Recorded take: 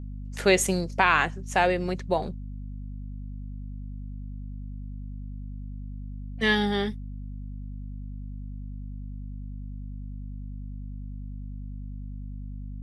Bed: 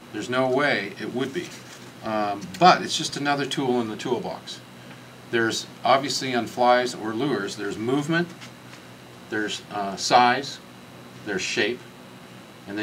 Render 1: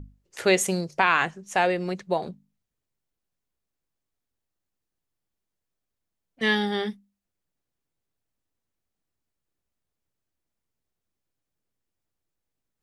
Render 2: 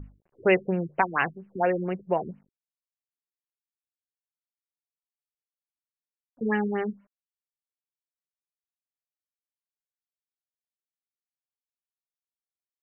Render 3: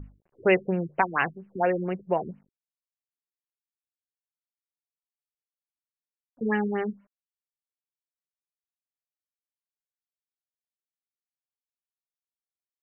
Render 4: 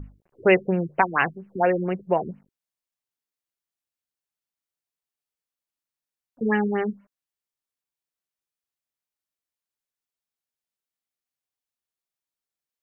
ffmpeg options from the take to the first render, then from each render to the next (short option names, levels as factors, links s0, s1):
-af "bandreject=f=50:t=h:w=6,bandreject=f=100:t=h:w=6,bandreject=f=150:t=h:w=6,bandreject=f=200:t=h:w=6,bandreject=f=250:t=h:w=6"
-af "acrusher=bits=10:mix=0:aa=0.000001,afftfilt=real='re*lt(b*sr/1024,410*pow(3100/410,0.5+0.5*sin(2*PI*4.3*pts/sr)))':imag='im*lt(b*sr/1024,410*pow(3100/410,0.5+0.5*sin(2*PI*4.3*pts/sr)))':win_size=1024:overlap=0.75"
-af anull
-af "volume=1.5"